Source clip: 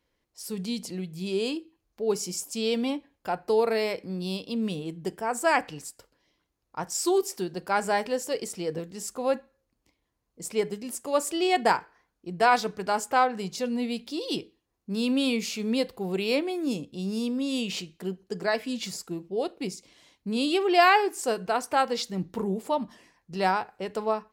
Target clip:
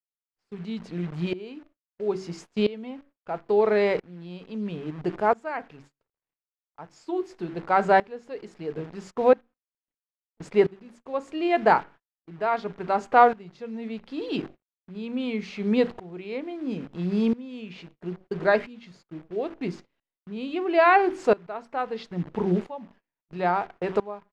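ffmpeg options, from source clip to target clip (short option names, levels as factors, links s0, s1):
-af "bandreject=f=50:t=h:w=6,bandreject=f=100:t=h:w=6,bandreject=f=150:t=h:w=6,bandreject=f=200:t=h:w=6,bandreject=f=250:t=h:w=6,bandreject=f=300:t=h:w=6,bandreject=f=350:t=h:w=6,bandreject=f=400:t=h:w=6,asetrate=41625,aresample=44100,atempo=1.05946,acrusher=bits=8:dc=4:mix=0:aa=0.000001,lowpass=2200,agate=range=0.0891:threshold=0.00447:ratio=16:detection=peak,aeval=exprs='val(0)*pow(10,-20*if(lt(mod(-0.75*n/s,1),2*abs(-0.75)/1000),1-mod(-0.75*n/s,1)/(2*abs(-0.75)/1000),(mod(-0.75*n/s,1)-2*abs(-0.75)/1000)/(1-2*abs(-0.75)/1000))/20)':c=same,volume=2.66"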